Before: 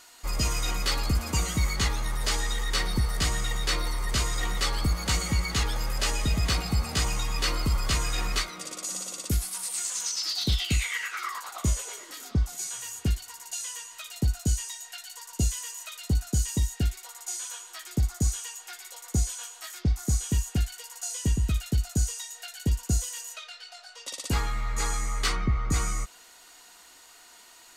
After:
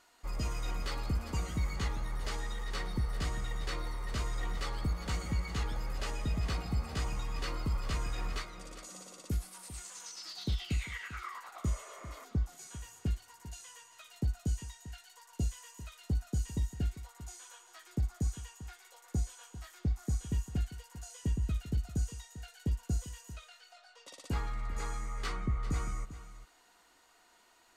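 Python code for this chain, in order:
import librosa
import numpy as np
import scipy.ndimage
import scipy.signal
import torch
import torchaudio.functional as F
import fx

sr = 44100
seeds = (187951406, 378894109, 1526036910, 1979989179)

y = fx.high_shelf(x, sr, hz=2600.0, db=-11.0)
y = y + 10.0 ** (-14.0 / 20.0) * np.pad(y, (int(396 * sr / 1000.0), 0))[:len(y)]
y = fx.spec_repair(y, sr, seeds[0], start_s=11.73, length_s=0.49, low_hz=420.0, high_hz=2500.0, source='before')
y = y * librosa.db_to_amplitude(-7.0)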